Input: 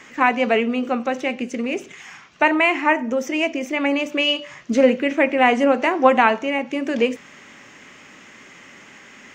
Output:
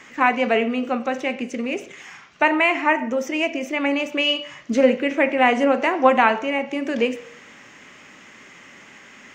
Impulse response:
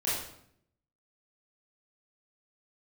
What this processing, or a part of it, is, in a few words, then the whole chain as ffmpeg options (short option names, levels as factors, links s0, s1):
filtered reverb send: -filter_complex "[0:a]asplit=2[s0][s1];[s1]highpass=f=350:w=0.5412,highpass=f=350:w=1.3066,lowpass=4400[s2];[1:a]atrim=start_sample=2205[s3];[s2][s3]afir=irnorm=-1:irlink=0,volume=0.106[s4];[s0][s4]amix=inputs=2:normalize=0,volume=0.841"